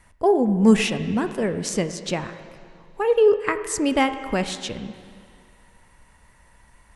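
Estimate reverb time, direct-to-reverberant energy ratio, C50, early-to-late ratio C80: 2.2 s, 10.0 dB, 11.0 dB, 12.0 dB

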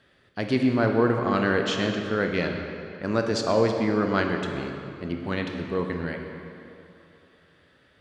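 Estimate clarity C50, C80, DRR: 4.0 dB, 5.0 dB, 3.0 dB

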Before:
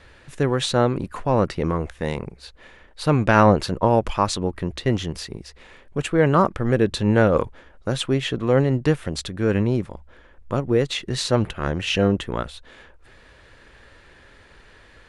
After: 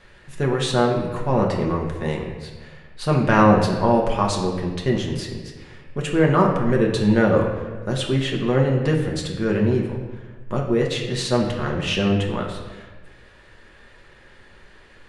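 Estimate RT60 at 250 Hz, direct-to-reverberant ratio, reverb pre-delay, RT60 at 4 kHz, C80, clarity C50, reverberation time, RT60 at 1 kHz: 1.5 s, -1.0 dB, 5 ms, 1.0 s, 7.0 dB, 4.5 dB, 1.4 s, 1.3 s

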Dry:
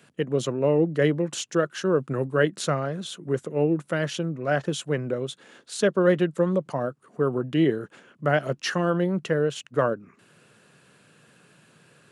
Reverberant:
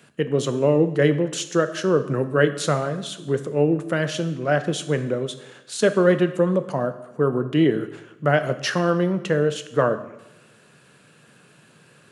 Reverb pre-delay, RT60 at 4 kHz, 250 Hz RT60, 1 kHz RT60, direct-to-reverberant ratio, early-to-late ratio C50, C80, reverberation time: 4 ms, 0.85 s, 0.95 s, 0.95 s, 10.0 dB, 12.5 dB, 14.5 dB, 0.95 s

